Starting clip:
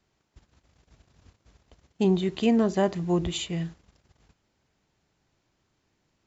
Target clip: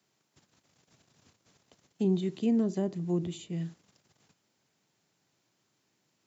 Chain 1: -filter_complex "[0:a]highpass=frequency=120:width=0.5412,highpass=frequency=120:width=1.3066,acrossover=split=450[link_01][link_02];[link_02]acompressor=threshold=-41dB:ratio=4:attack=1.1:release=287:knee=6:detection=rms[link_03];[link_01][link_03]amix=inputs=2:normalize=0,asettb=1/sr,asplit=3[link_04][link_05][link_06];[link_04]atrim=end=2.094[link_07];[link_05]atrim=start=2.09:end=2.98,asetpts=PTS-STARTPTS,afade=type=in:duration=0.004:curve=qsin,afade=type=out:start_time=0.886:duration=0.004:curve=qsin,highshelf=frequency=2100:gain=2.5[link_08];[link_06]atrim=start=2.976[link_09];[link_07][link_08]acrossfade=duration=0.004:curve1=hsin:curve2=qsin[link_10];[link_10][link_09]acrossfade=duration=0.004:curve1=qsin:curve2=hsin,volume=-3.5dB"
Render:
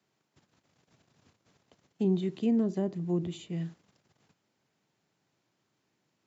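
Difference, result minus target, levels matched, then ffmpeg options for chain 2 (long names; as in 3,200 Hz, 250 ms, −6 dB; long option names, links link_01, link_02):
8,000 Hz band −4.5 dB
-filter_complex "[0:a]highpass=frequency=120:width=0.5412,highpass=frequency=120:width=1.3066,highshelf=frequency=4900:gain=10.5,acrossover=split=450[link_01][link_02];[link_02]acompressor=threshold=-41dB:ratio=4:attack=1.1:release=287:knee=6:detection=rms[link_03];[link_01][link_03]amix=inputs=2:normalize=0,asettb=1/sr,asplit=3[link_04][link_05][link_06];[link_04]atrim=end=2.094[link_07];[link_05]atrim=start=2.09:end=2.98,asetpts=PTS-STARTPTS,afade=type=in:duration=0.004:curve=qsin,afade=type=out:start_time=0.886:duration=0.004:curve=qsin,highshelf=frequency=2100:gain=2.5[link_08];[link_06]atrim=start=2.976[link_09];[link_07][link_08]acrossfade=duration=0.004:curve1=hsin:curve2=qsin[link_10];[link_10][link_09]acrossfade=duration=0.004:curve1=qsin:curve2=hsin,volume=-3.5dB"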